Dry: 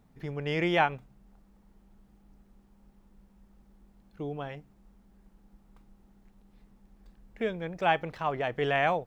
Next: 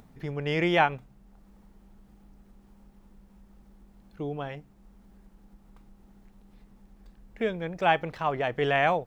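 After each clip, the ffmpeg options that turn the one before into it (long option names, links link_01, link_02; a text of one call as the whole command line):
ffmpeg -i in.wav -af "acompressor=mode=upward:threshold=-51dB:ratio=2.5,volume=2.5dB" out.wav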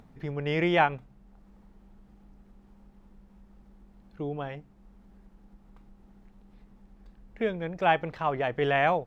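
ffmpeg -i in.wav -af "lowpass=frequency=3700:poles=1" out.wav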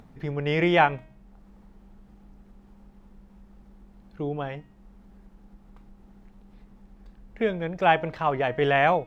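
ffmpeg -i in.wav -af "bandreject=frequency=315.6:width_type=h:width=4,bandreject=frequency=631.2:width_type=h:width=4,bandreject=frequency=946.8:width_type=h:width=4,bandreject=frequency=1262.4:width_type=h:width=4,bandreject=frequency=1578:width_type=h:width=4,bandreject=frequency=1893.6:width_type=h:width=4,bandreject=frequency=2209.2:width_type=h:width=4,bandreject=frequency=2524.8:width_type=h:width=4,bandreject=frequency=2840.4:width_type=h:width=4,bandreject=frequency=3156:width_type=h:width=4,bandreject=frequency=3471.6:width_type=h:width=4,bandreject=frequency=3787.2:width_type=h:width=4,bandreject=frequency=4102.8:width_type=h:width=4,bandreject=frequency=4418.4:width_type=h:width=4,bandreject=frequency=4734:width_type=h:width=4,bandreject=frequency=5049.6:width_type=h:width=4,bandreject=frequency=5365.2:width_type=h:width=4,bandreject=frequency=5680.8:width_type=h:width=4,bandreject=frequency=5996.4:width_type=h:width=4,bandreject=frequency=6312:width_type=h:width=4,bandreject=frequency=6627.6:width_type=h:width=4,bandreject=frequency=6943.2:width_type=h:width=4,bandreject=frequency=7258.8:width_type=h:width=4,bandreject=frequency=7574.4:width_type=h:width=4,bandreject=frequency=7890:width_type=h:width=4,bandreject=frequency=8205.6:width_type=h:width=4,bandreject=frequency=8521.2:width_type=h:width=4,bandreject=frequency=8836.8:width_type=h:width=4,bandreject=frequency=9152.4:width_type=h:width=4,bandreject=frequency=9468:width_type=h:width=4,bandreject=frequency=9783.6:width_type=h:width=4,bandreject=frequency=10099.2:width_type=h:width=4,bandreject=frequency=10414.8:width_type=h:width=4,bandreject=frequency=10730.4:width_type=h:width=4,bandreject=frequency=11046:width_type=h:width=4,bandreject=frequency=11361.6:width_type=h:width=4,bandreject=frequency=11677.2:width_type=h:width=4,bandreject=frequency=11992.8:width_type=h:width=4,bandreject=frequency=12308.4:width_type=h:width=4,bandreject=frequency=12624:width_type=h:width=4,volume=3.5dB" out.wav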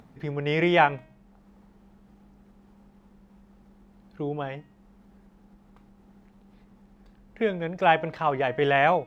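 ffmpeg -i in.wav -af "highpass=frequency=93:poles=1" out.wav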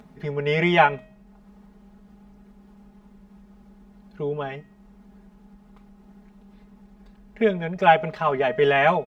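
ffmpeg -i in.wav -af "aecho=1:1:4.8:1" out.wav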